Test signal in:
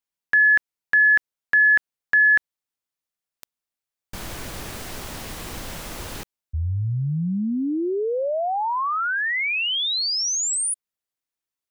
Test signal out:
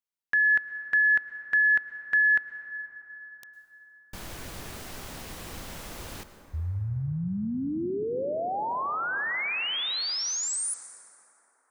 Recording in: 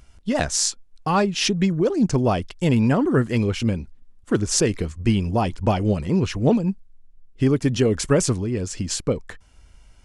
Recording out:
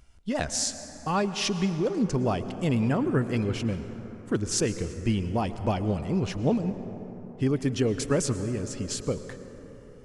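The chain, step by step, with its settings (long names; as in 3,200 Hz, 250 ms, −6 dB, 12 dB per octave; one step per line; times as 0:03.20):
dense smooth reverb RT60 4.4 s, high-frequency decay 0.35×, pre-delay 95 ms, DRR 10.5 dB
level −6.5 dB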